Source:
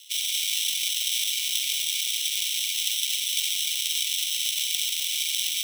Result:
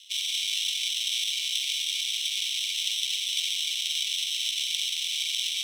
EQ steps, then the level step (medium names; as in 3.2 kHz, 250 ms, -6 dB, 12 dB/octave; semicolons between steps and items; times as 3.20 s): band-pass filter 3.3 kHz, Q 0.85; 0.0 dB